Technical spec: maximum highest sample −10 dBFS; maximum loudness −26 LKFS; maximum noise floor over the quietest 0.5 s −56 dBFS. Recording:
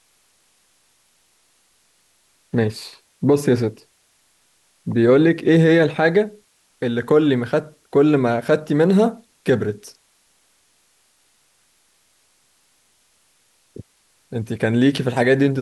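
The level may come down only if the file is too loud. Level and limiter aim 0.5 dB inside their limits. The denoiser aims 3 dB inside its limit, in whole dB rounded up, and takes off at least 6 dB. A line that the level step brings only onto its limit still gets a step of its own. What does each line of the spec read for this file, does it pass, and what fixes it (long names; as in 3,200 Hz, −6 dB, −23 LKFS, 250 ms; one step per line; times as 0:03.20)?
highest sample −5.5 dBFS: out of spec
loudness −18.5 LKFS: out of spec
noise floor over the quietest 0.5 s −61 dBFS: in spec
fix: level −8 dB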